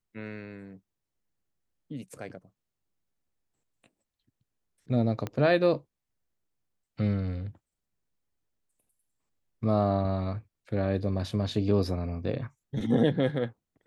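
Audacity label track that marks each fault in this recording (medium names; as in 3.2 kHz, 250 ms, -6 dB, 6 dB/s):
5.270000	5.270000	pop -19 dBFS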